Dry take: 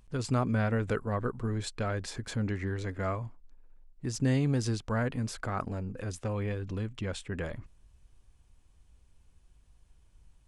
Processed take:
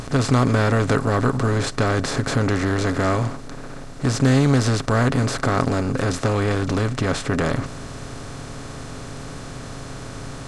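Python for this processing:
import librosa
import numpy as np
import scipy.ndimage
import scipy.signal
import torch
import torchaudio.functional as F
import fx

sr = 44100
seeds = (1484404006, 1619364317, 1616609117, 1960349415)

y = fx.bin_compress(x, sr, power=0.4)
y = y + 0.31 * np.pad(y, (int(7.3 * sr / 1000.0), 0))[:len(y)]
y = fx.doppler_dist(y, sr, depth_ms=0.1)
y = y * 10.0 ** (6.5 / 20.0)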